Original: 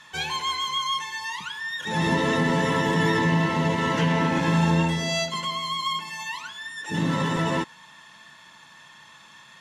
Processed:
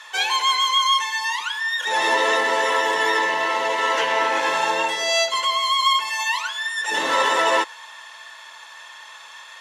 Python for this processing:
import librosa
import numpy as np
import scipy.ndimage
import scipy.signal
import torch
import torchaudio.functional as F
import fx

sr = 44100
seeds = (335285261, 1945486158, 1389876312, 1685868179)

y = scipy.signal.sosfilt(scipy.signal.butter(4, 480.0, 'highpass', fs=sr, output='sos'), x)
y = fx.rider(y, sr, range_db=10, speed_s=2.0)
y = y * librosa.db_to_amplitude(7.0)